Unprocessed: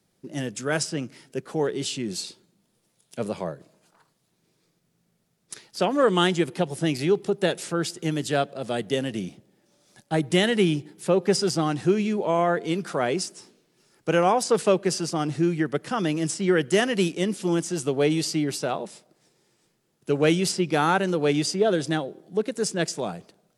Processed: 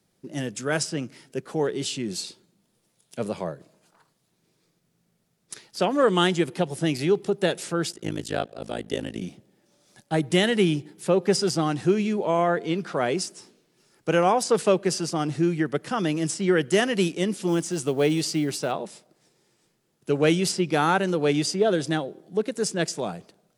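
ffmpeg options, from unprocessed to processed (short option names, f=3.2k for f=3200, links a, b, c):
-filter_complex "[0:a]asettb=1/sr,asplit=3[a][b][c];[a]atrim=end=7.924[d];[b]atrim=start=7.92:end=9.22,asetpts=PTS-STARTPTS,afade=t=in:d=0.004:c=qsin,afade=t=out:st=1.296:d=0.004:c=qsin,tremolo=f=54:d=1[e];[c]atrim=start=9.216[f];[d][e]acrossfade=d=0.004:c1=hsin:c2=qsin[g];[g][f]acrossfade=d=0.004:c1=qsin:c2=hsin,asettb=1/sr,asplit=3[h][i][j];[h]atrim=end=12.484[k];[i]atrim=start=12.48:end=12.96,asetpts=PTS-STARTPTS,afade=t=in:d=0.004:c=qsin,afade=t=out:st=0.476:d=0.004:c=qsin,acrossover=split=5500[l][m];[m]acompressor=threshold=-60dB:ratio=4:attack=1:release=60[n];[l][n]amix=inputs=2:normalize=0[o];[j]atrim=start=12.956[p];[k][o]acrossfade=d=0.004:c1=hsin:c2=qsin[q];[q][p]acrossfade=d=0.004:c1=qsin:c2=hsin,asettb=1/sr,asplit=3[r][s][t];[r]atrim=end=17.484[u];[s]atrim=start=17.48:end=18.72,asetpts=PTS-STARTPTS,afade=t=in:d=0.004:c=qsin,afade=t=out:st=1.236:d=0.004:c=qsin,acrusher=bits=8:mode=log:mix=0:aa=0.000001[v];[t]atrim=start=18.716[w];[u][v]acrossfade=d=0.004:c1=hsin:c2=qsin[x];[x][w]acrossfade=d=0.004:c1=qsin:c2=hsin"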